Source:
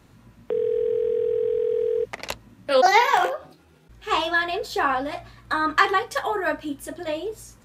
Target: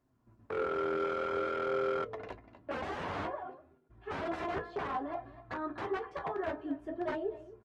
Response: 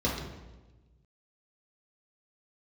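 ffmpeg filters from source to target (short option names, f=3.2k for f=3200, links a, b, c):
-filter_complex "[0:a]asettb=1/sr,asplit=3[a][b][c];[a]atrim=end=4.584[d];[b]atrim=start=4.58:end=7,asetpts=PTS-STARTPTS,afade=t=in:d=0.004:c=qsin,afade=t=out:st=2.416:d=0.004:c=qsin,acompressor=threshold=-34dB:ratio=1.5[e];[c]atrim=start=6.996[f];[d][e]acrossfade=d=0.004:c1=hsin:c2=qsin[g];[g][f]acrossfade=d=0.004:c1=qsin:c2=hsin,aecho=1:1:2.9:0.55,dynaudnorm=f=110:g=9:m=5dB,aecho=1:1:245:0.15,aeval=exprs='(mod(5.96*val(0)+1,2)-1)/5.96':c=same,highpass=f=49:w=0.5412,highpass=f=49:w=1.3066,agate=range=-9dB:threshold=-49dB:ratio=16:detection=peak,lowpass=1.2k,flanger=delay=7.5:depth=5.2:regen=52:speed=0.55:shape=sinusoidal,bandreject=f=60:t=h:w=6,bandreject=f=120:t=h:w=6,bandreject=f=180:t=h:w=6,bandreject=f=240:t=h:w=6,bandreject=f=300:t=h:w=6,bandreject=f=360:t=h:w=6,bandreject=f=420:t=h:w=6,bandreject=f=480:t=h:w=6,bandreject=f=540:t=h:w=6,bandreject=f=600:t=h:w=6,volume=-6dB" -ar 48000 -c:a libopus -b:a 24k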